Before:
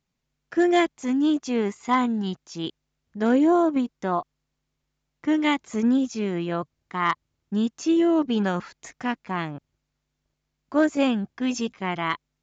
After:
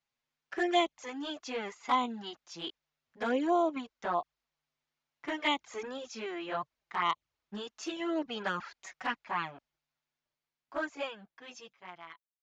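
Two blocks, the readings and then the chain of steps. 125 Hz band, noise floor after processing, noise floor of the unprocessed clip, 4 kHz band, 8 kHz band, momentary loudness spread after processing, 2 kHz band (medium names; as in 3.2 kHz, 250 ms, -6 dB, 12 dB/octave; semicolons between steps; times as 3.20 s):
-19.0 dB, under -85 dBFS, -80 dBFS, -3.5 dB, no reading, 19 LU, -6.0 dB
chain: fade out at the end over 3.01 s; three-band isolator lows -15 dB, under 540 Hz, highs -12 dB, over 6 kHz; touch-sensitive flanger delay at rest 8.5 ms, full sweep at -22.5 dBFS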